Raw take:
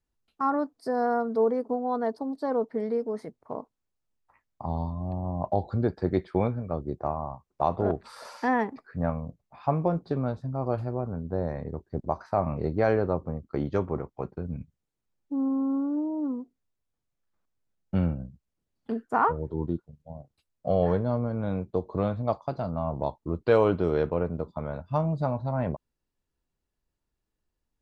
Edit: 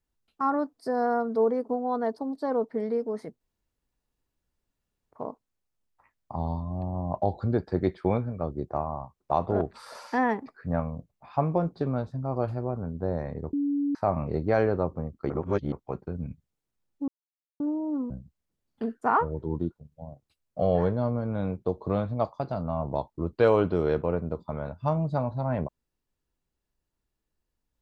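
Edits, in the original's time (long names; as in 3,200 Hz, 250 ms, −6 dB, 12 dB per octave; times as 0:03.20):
0:03.41: splice in room tone 1.70 s
0:11.83–0:12.25: beep over 285 Hz −23.5 dBFS
0:13.60–0:14.02: reverse
0:15.38–0:15.90: silence
0:16.40–0:18.18: remove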